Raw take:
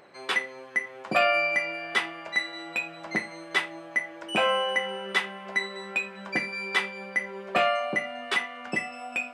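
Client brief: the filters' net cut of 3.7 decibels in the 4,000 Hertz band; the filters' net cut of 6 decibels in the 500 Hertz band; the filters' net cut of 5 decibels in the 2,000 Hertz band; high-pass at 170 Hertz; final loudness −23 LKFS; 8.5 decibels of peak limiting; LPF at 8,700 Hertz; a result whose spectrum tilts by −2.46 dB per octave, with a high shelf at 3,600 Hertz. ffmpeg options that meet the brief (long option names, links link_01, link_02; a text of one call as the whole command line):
ffmpeg -i in.wav -af "highpass=170,lowpass=8700,equalizer=frequency=500:width_type=o:gain=-7.5,equalizer=frequency=2000:width_type=o:gain=-5,highshelf=frequency=3600:gain=3,equalizer=frequency=4000:width_type=o:gain=-4.5,volume=11.5dB,alimiter=limit=-10.5dB:level=0:latency=1" out.wav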